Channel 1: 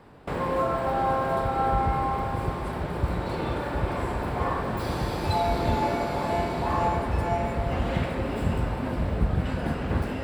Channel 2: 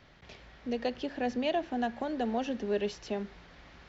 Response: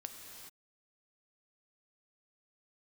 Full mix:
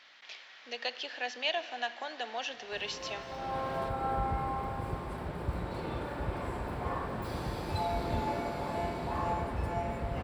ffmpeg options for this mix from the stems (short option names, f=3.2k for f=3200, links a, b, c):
-filter_complex "[0:a]adelay=2450,volume=-8dB[a];[1:a]equalizer=f=3.5k:t=o:w=2.4:g=8.5,aeval=exprs='val(0)+0.00178*(sin(2*PI*60*n/s)+sin(2*PI*2*60*n/s)/2+sin(2*PI*3*60*n/s)/3+sin(2*PI*4*60*n/s)/4+sin(2*PI*5*60*n/s)/5)':c=same,highpass=810,volume=-3.5dB,asplit=3[b][c][d];[c]volume=-4dB[e];[d]apad=whole_len=559360[f];[a][f]sidechaincompress=threshold=-48dB:ratio=8:attack=12:release=616[g];[2:a]atrim=start_sample=2205[h];[e][h]afir=irnorm=-1:irlink=0[i];[g][b][i]amix=inputs=3:normalize=0"